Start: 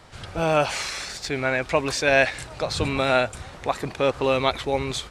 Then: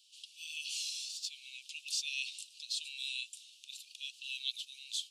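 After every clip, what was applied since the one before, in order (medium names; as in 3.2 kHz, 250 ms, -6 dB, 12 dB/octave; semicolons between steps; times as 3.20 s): steep high-pass 2.7 kHz 96 dB/octave; trim -6.5 dB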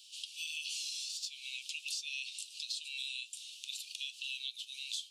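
compression 6:1, threshold -47 dBFS, peak gain reduction 16 dB; flange 1.1 Hz, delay 8.8 ms, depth 2.3 ms, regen +75%; trim +13.5 dB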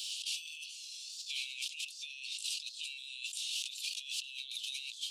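compressor with a negative ratio -52 dBFS, ratio -1; trim +8.5 dB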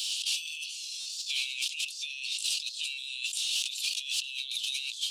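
in parallel at -9 dB: saturation -35.5 dBFS, distortion -13 dB; on the sum: buffer glitch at 1.00 s, samples 256, times 9; trim +5.5 dB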